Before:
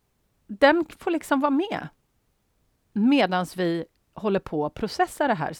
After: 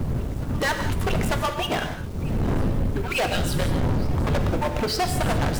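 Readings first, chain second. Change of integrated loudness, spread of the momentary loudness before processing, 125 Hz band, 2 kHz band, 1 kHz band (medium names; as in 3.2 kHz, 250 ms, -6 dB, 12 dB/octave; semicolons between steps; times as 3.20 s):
-1.0 dB, 14 LU, +13.0 dB, 0.0 dB, -1.5 dB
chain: harmonic-percussive separation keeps percussive; wind noise 130 Hz -26 dBFS; de-esser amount 80%; waveshaping leveller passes 3; in parallel at -2.5 dB: compression, threshold -25 dBFS, peak gain reduction 13.5 dB; on the sum: saturation -21 dBFS, distortion -7 dB; bit crusher 8-bit; reverse echo 895 ms -21 dB; gated-style reverb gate 220 ms flat, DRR 5.5 dB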